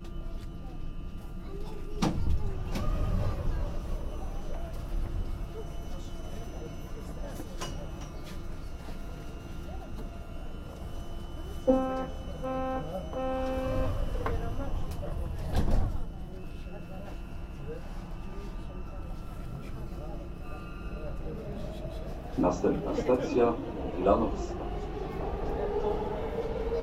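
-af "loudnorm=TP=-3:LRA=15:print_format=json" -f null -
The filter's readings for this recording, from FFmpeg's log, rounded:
"input_i" : "-34.6",
"input_tp" : "-10.6",
"input_lra" : "11.6",
"input_thresh" : "-44.6",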